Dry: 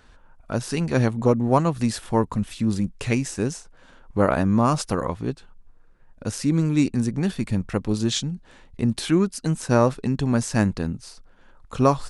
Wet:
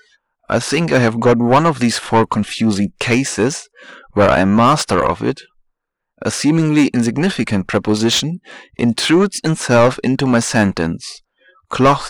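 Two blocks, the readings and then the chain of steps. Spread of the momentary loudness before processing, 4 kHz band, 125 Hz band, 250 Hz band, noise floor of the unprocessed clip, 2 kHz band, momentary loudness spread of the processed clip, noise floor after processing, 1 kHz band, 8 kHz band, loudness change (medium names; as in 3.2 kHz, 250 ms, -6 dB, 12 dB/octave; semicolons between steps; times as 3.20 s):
11 LU, +12.5 dB, +4.5 dB, +7.5 dB, -52 dBFS, +13.5 dB, 10 LU, -74 dBFS, +10.5 dB, +9.5 dB, +8.0 dB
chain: overdrive pedal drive 23 dB, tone 3.1 kHz, clips at -3.5 dBFS; spectral noise reduction 29 dB; trim +2 dB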